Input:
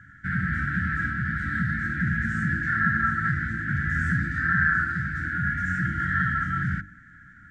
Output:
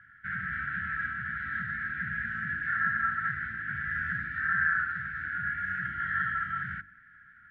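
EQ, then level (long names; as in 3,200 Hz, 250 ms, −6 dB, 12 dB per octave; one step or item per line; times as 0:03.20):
transistor ladder low-pass 3,500 Hz, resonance 40%
low shelf with overshoot 690 Hz −8 dB, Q 3
0.0 dB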